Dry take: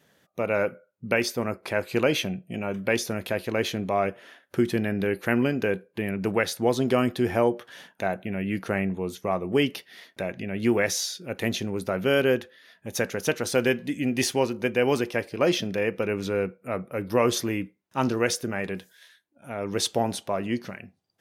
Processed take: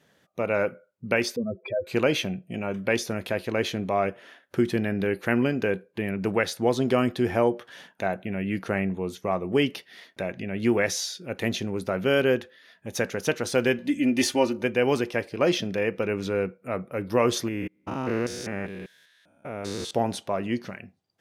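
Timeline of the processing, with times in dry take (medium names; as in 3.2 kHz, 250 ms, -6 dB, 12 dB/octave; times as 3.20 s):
1.36–1.87 s: spectral contrast enhancement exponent 3.8
13.78–14.63 s: comb 3.4 ms, depth 73%
17.48–19.91 s: spectrogram pixelated in time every 200 ms
whole clip: treble shelf 11 kHz -9 dB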